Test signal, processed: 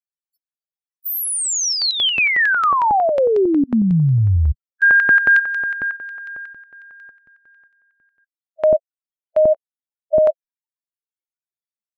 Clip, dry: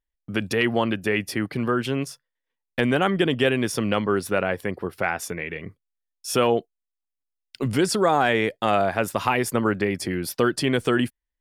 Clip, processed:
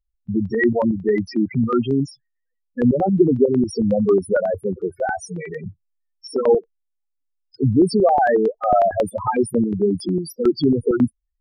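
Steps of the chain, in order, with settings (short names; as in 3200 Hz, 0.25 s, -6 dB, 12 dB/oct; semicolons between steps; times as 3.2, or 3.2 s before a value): loudest bins only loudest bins 4; stepped notch 11 Hz 260–4700 Hz; gain +9 dB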